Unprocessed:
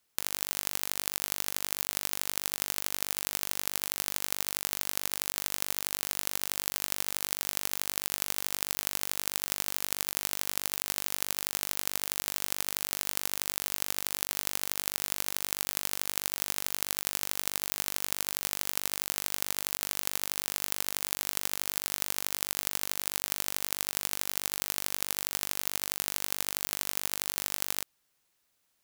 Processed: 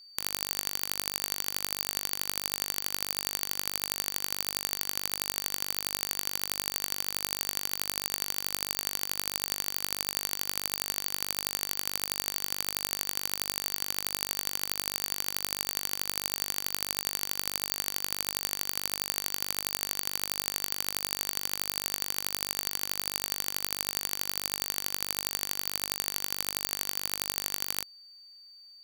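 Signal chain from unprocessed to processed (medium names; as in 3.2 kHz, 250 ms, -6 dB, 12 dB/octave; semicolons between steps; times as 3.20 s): whistle 4.6 kHz -50 dBFS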